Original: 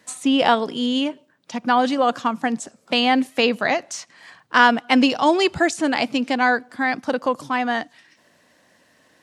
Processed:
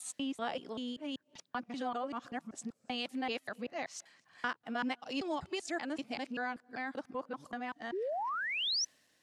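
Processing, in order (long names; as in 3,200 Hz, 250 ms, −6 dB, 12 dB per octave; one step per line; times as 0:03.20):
reversed piece by piece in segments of 193 ms
notch filter 950 Hz, Q 17
downward compressor 2 to 1, threshold −37 dBFS, peak gain reduction 14.5 dB
sound drawn into the spectrogram rise, 0:07.92–0:08.85, 340–6,100 Hz −28 dBFS
multiband upward and downward expander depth 40%
level −7.5 dB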